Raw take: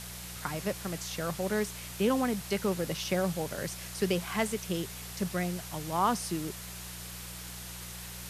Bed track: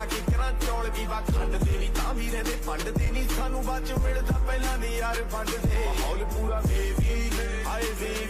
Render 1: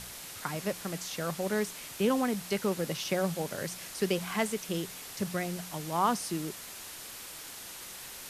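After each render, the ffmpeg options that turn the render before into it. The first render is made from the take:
-af "bandreject=f=60:t=h:w=4,bandreject=f=120:t=h:w=4,bandreject=f=180:t=h:w=4"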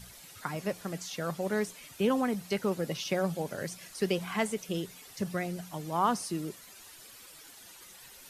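-af "afftdn=nr=11:nf=-45"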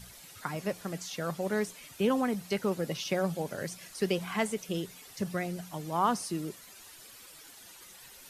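-af anull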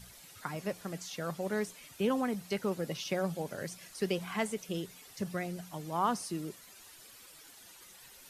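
-af "volume=0.708"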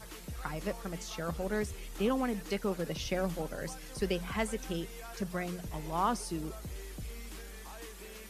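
-filter_complex "[1:a]volume=0.119[s0];[0:a][s0]amix=inputs=2:normalize=0"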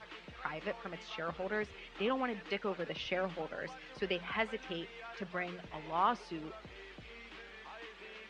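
-af "lowpass=f=3000:w=0.5412,lowpass=f=3000:w=1.3066,aemphasis=mode=production:type=riaa"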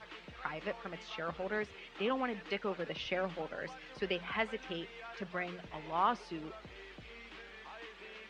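-filter_complex "[0:a]asettb=1/sr,asplit=3[s0][s1][s2];[s0]atrim=end=1.584[s3];[s1]atrim=start=1.58:end=2.11,asetpts=PTS-STARTPTS,afade=t=in:d=0.004:c=qsin,afade=t=out:st=0.526:d=0.004:c=qsin,highpass=f=91:p=1[s4];[s2]atrim=start=2.106[s5];[s3][s4]acrossfade=d=0.004:c1=hsin:c2=qsin[s6];[s6][s5]acrossfade=d=0.004:c1=qsin:c2=hsin"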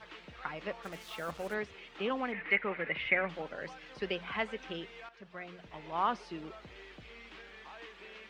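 -filter_complex "[0:a]asplit=3[s0][s1][s2];[s0]afade=t=out:st=0.82:d=0.02[s3];[s1]acrusher=bits=7:mix=0:aa=0.5,afade=t=in:st=0.82:d=0.02,afade=t=out:st=1.53:d=0.02[s4];[s2]afade=t=in:st=1.53:d=0.02[s5];[s3][s4][s5]amix=inputs=3:normalize=0,asettb=1/sr,asplit=3[s6][s7][s8];[s6]atrim=end=2.324[s9];[s7]atrim=start=2.32:end=3.29,asetpts=PTS-STARTPTS,afade=t=in:d=0.004:c=qsin,afade=t=out:st=0.966:d=0.004:c=qsin,lowpass=f=2100:t=q:w=6.2[s10];[s8]atrim=start=3.286[s11];[s9][s10]acrossfade=d=0.004:c1=hsin:c2=qsin[s12];[s12][s11]acrossfade=d=0.004:c1=qsin:c2=hsin,asplit=2[s13][s14];[s13]atrim=end=5.09,asetpts=PTS-STARTPTS,afade=t=out:st=5.086:d=0.004:c=hsin:silence=0.199526[s15];[s14]atrim=start=5.09,asetpts=PTS-STARTPTS,afade=t=in:d=0.94:silence=0.199526[s16];[s15][s16]concat=n=2:v=0:a=1"

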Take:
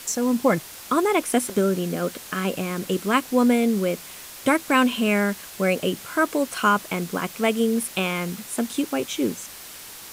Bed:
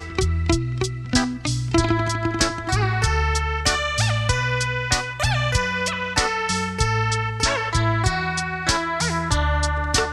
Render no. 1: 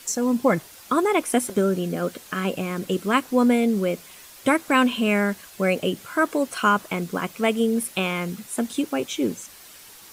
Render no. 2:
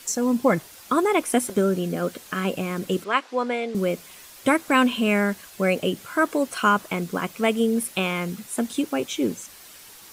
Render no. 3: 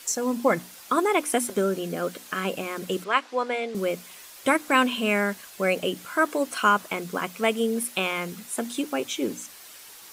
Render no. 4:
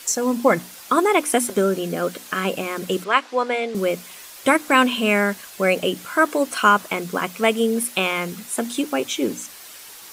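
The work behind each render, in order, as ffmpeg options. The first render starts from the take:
-af "afftdn=nr=7:nf=-41"
-filter_complex "[0:a]asettb=1/sr,asplit=3[s0][s1][s2];[s0]atrim=end=3.044[s3];[s1]atrim=start=3.04:end=3.75,asetpts=PTS-STARTPTS,afade=t=in:d=0.004:c=qsin,afade=t=out:st=0.706:d=0.004:c=qsin,highpass=520,lowpass=4600[s4];[s2]atrim=start=3.746[s5];[s3][s4]acrossfade=d=0.004:c1=hsin:c2=qsin[s6];[s6][s5]acrossfade=d=0.004:c1=qsin:c2=hsin"
-af "lowshelf=f=230:g=-9.5,bandreject=f=60:t=h:w=6,bandreject=f=120:t=h:w=6,bandreject=f=180:t=h:w=6,bandreject=f=240:t=h:w=6,bandreject=f=300:t=h:w=6"
-af "volume=1.78,alimiter=limit=0.708:level=0:latency=1"

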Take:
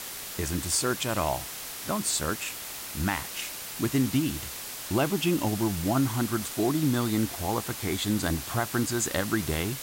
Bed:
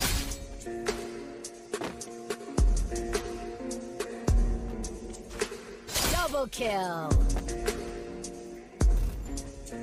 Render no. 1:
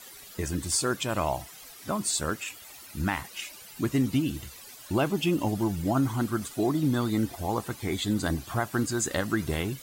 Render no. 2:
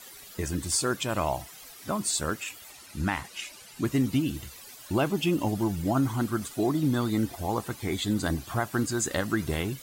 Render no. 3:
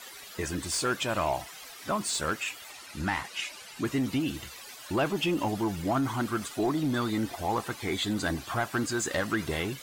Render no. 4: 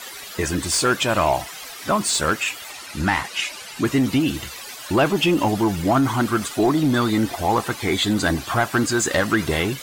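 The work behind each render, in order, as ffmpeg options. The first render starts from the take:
-af "afftdn=nr=14:nf=-39"
-filter_complex "[0:a]asettb=1/sr,asplit=3[s0][s1][s2];[s0]atrim=end=2.714[s3];[s1]atrim=start=2.71:end=3.85,asetpts=PTS-STARTPTS,afade=t=in:d=0.004:c=qsin,afade=t=out:st=1.136:d=0.004:c=qsin,lowpass=11000[s4];[s2]atrim=start=3.846[s5];[s3][s4]acrossfade=d=0.004:c1=hsin:c2=qsin[s6];[s6][s5]acrossfade=d=0.004:c1=qsin:c2=hsin"
-filter_complex "[0:a]asoftclip=type=tanh:threshold=0.133,asplit=2[s0][s1];[s1]highpass=f=720:p=1,volume=3.55,asoftclip=type=tanh:threshold=0.126[s2];[s0][s2]amix=inputs=2:normalize=0,lowpass=f=3700:p=1,volume=0.501"
-af "volume=2.99"

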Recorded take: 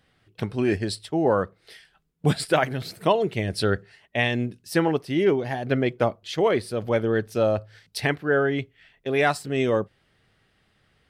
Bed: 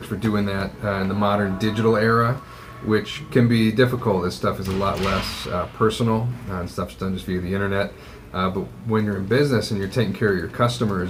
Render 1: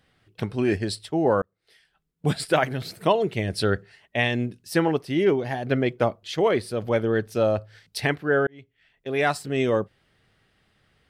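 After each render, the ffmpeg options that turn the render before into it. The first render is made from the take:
-filter_complex "[0:a]asplit=3[s0][s1][s2];[s0]atrim=end=1.42,asetpts=PTS-STARTPTS,afade=t=out:st=1.416:d=0.004:c=hsin[s3];[s1]atrim=start=1.42:end=8.47,asetpts=PTS-STARTPTS,afade=t=in:d=1.14,afade=t=out:st=7.046:d=0.004:c=hsin[s4];[s2]atrim=start=8.47,asetpts=PTS-STARTPTS,afade=t=in:d=0.92[s5];[s3][s4][s5]concat=n=3:v=0:a=1"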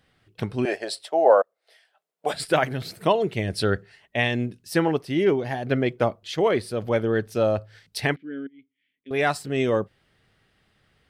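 -filter_complex "[0:a]asettb=1/sr,asplit=3[s0][s1][s2];[s0]atrim=end=0.654[s3];[s1]atrim=start=0.65:end=2.34,asetpts=PTS-STARTPTS,afade=t=in:d=0.004:c=qsin,afade=t=out:st=1.686:d=0.004:c=qsin,highpass=f=620:t=q:w=3.8[s4];[s2]atrim=start=2.336[s5];[s3][s4]acrossfade=d=0.004:c1=hsin:c2=qsin[s6];[s6][s5]acrossfade=d=0.004:c1=qsin:c2=hsin,asettb=1/sr,asplit=3[s7][s8][s9];[s7]atrim=end=8.164[s10];[s8]atrim=start=8.16:end=9.11,asetpts=PTS-STARTPTS,afade=t=in:d=0.004:c=qsin,afade=t=out:st=0.946:d=0.004:c=qsin,asplit=3[s11][s12][s13];[s11]bandpass=f=270:t=q:w=8,volume=1[s14];[s12]bandpass=f=2290:t=q:w=8,volume=0.501[s15];[s13]bandpass=f=3010:t=q:w=8,volume=0.355[s16];[s14][s15][s16]amix=inputs=3:normalize=0[s17];[s9]atrim=start=9.106[s18];[s10][s17]acrossfade=d=0.004:c1=hsin:c2=qsin[s19];[s19][s18]acrossfade=d=0.004:c1=qsin:c2=hsin"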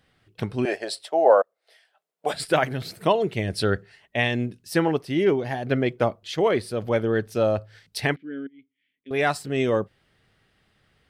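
-af anull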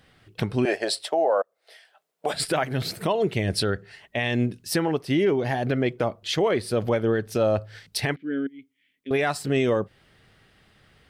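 -filter_complex "[0:a]asplit=2[s0][s1];[s1]acompressor=threshold=0.0355:ratio=6,volume=1.19[s2];[s0][s2]amix=inputs=2:normalize=0,alimiter=limit=0.211:level=0:latency=1:release=166"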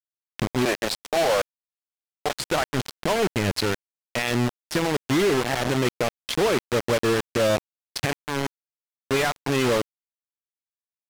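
-af "acrusher=bits=3:mix=0:aa=0.000001,adynamicsmooth=sensitivity=6:basefreq=1900"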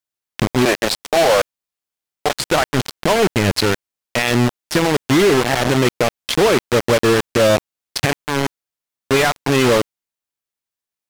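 -af "volume=2.37"

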